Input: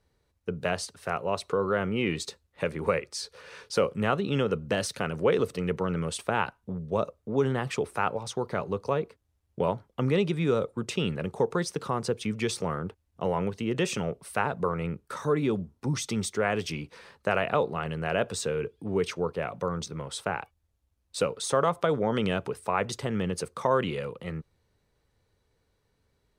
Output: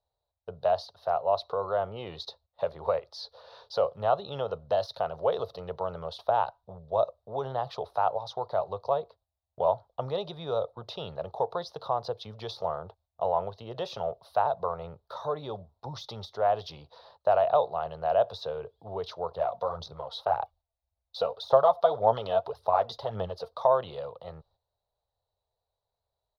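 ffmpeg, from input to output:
-filter_complex "[0:a]asettb=1/sr,asplit=3[a][b][c];[a]atrim=end=19.314[d];[b]atrim=start=19.31:end=23.65,asetpts=PTS-STARTPTS,afade=t=in:d=0.004:c=qsin,afade=t=out:st=4.336:d=0.004:c=qsin,aphaser=in_gain=1:out_gain=1:delay=4.5:decay=0.5:speed=1.8:type=sinusoidal[e];[c]atrim=start=23.646[f];[d][e]acrossfade=d=0.004:c1=hsin:c2=qsin[g];[g][f]acrossfade=d=0.004:c1=qsin:c2=hsin,agate=range=-10dB:threshold=-55dB:ratio=16:detection=peak,deesser=0.7,firequalizer=gain_entry='entry(100,0);entry(190,-12);entry(280,-14);entry(650,15);entry(1500,-5);entry(2300,-15);entry(3800,9);entry(5500,-3);entry(8000,-30);entry(11000,-9)':delay=0.05:min_phase=1,volume=-6dB"

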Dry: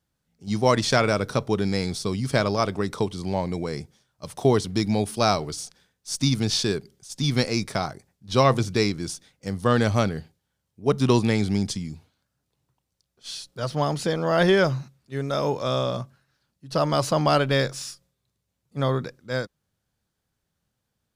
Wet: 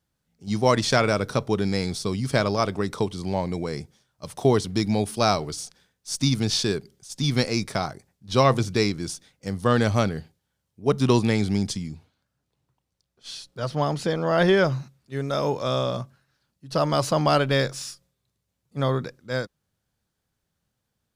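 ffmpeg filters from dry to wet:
-filter_complex "[0:a]asettb=1/sr,asplit=3[a][b][c];[a]atrim=end=11.884[d];[b]atrim=start=11.88:end=14.72,asetpts=PTS-STARTPTS,afade=t=in:d=0.004:c=qsin,afade=t=out:st=2.836:d=0.004:c=qsin,highshelf=f=5.9k:g=-6[e];[c]atrim=start=14.716[f];[d][e]acrossfade=d=0.004:c1=hsin:c2=qsin[g];[g][f]acrossfade=d=0.004:c1=qsin:c2=hsin"

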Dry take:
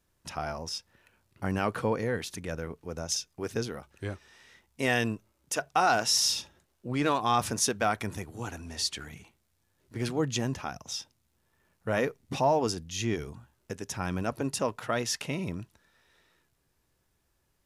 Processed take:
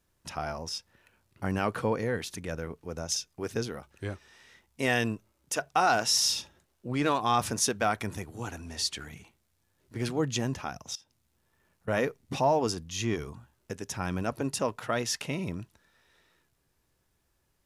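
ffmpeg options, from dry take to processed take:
-filter_complex "[0:a]asettb=1/sr,asplit=3[a][b][c];[a]atrim=end=10.954[d];[b]atrim=start=10.95:end=11.88,asetpts=PTS-STARTPTS,afade=t=in:d=0.004:c=qsin,afade=t=out:st=0.926:d=0.004:c=qsin,acompressor=threshold=-59dB:ratio=2.5:attack=3.2:release=140:knee=1:detection=peak[e];[c]atrim=start=11.876[f];[d][e]acrossfade=d=0.004:c1=hsin:c2=qsin[g];[g][f]acrossfade=d=0.004:c1=qsin:c2=hsin,asettb=1/sr,asplit=3[h][i][j];[h]atrim=end=12.714[k];[i]atrim=start=12.71:end=13.36,asetpts=PTS-STARTPTS,afade=t=in:d=0.004:c=qsin,afade=t=out:st=0.646:d=0.004:c=qsin,equalizer=f=1.1k:t=o:w=0.32:g=7.5[l];[j]atrim=start=13.356[m];[k][l]acrossfade=d=0.004:c1=hsin:c2=qsin[n];[n][m]acrossfade=d=0.004:c1=qsin:c2=hsin"

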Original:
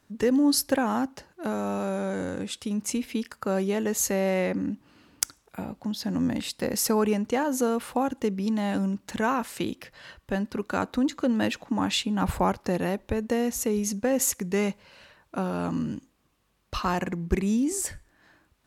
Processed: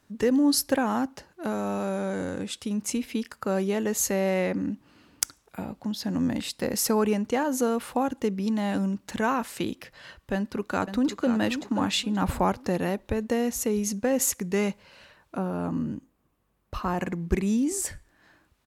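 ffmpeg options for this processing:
-filter_complex "[0:a]asplit=2[a][b];[b]afade=t=in:st=10.34:d=0.01,afade=t=out:st=11.32:d=0.01,aecho=0:1:530|1060|1590|2120:0.354813|0.124185|0.0434646|0.0152126[c];[a][c]amix=inputs=2:normalize=0,asettb=1/sr,asplit=3[d][e][f];[d]atrim=end=15.374[g];[e]atrim=start=15.37:end=16.99,asetpts=PTS-STARTPTS,afade=t=in:d=0.004:c=qsin,afade=t=out:st=1.616:d=0.004:c=qsin,equalizer=f=4.6k:t=o:w=2.6:g=-11[h];[f]atrim=start=16.986[i];[g][h]acrossfade=d=0.004:c1=hsin:c2=qsin[j];[j][i]acrossfade=d=0.004:c1=qsin:c2=hsin"

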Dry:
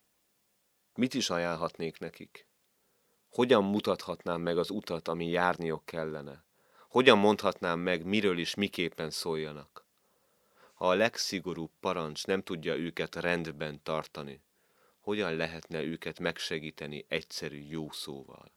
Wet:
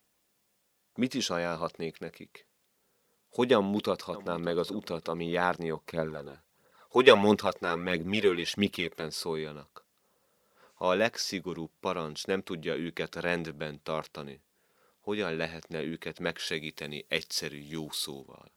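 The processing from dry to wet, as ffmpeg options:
-filter_complex "[0:a]asplit=2[a][b];[b]afade=t=in:st=3.54:d=0.01,afade=t=out:st=4.27:d=0.01,aecho=0:1:590|1180|1770:0.125893|0.0440624|0.0154218[c];[a][c]amix=inputs=2:normalize=0,asplit=3[d][e][f];[d]afade=t=out:st=5.9:d=0.02[g];[e]aphaser=in_gain=1:out_gain=1:delay=3:decay=0.5:speed=1.5:type=triangular,afade=t=in:st=5.9:d=0.02,afade=t=out:st=9.02:d=0.02[h];[f]afade=t=in:st=9.02:d=0.02[i];[g][h][i]amix=inputs=3:normalize=0,asettb=1/sr,asplit=3[j][k][l];[j]atrim=end=16.474[m];[k]atrim=start=16.47:end=18.22,asetpts=PTS-STARTPTS,afade=t=in:d=0.004:c=qsin,afade=t=out:st=1.746:d=0.004:c=qsin,highshelf=f=2.8k:g=9.5[n];[l]atrim=start=18.216[o];[m][n]acrossfade=d=0.004:c1=hsin:c2=qsin[p];[p][o]acrossfade=d=0.004:c1=qsin:c2=hsin"

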